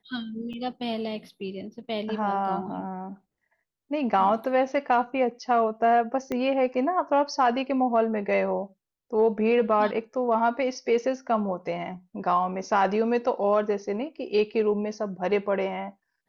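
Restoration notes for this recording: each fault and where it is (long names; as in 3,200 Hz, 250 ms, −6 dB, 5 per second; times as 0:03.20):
0:00.53–0:00.54: drop-out 6.8 ms
0:06.32: click −17 dBFS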